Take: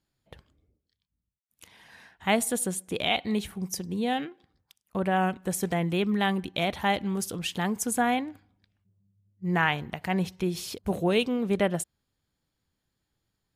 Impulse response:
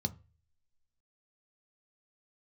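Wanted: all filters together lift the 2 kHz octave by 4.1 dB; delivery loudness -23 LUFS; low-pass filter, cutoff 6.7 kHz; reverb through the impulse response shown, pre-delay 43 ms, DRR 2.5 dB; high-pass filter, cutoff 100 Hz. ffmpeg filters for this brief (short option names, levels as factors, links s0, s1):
-filter_complex "[0:a]highpass=100,lowpass=6700,equalizer=f=2000:t=o:g=5,asplit=2[s0][s1];[1:a]atrim=start_sample=2205,adelay=43[s2];[s1][s2]afir=irnorm=-1:irlink=0,volume=0.631[s3];[s0][s3]amix=inputs=2:normalize=0,volume=0.891"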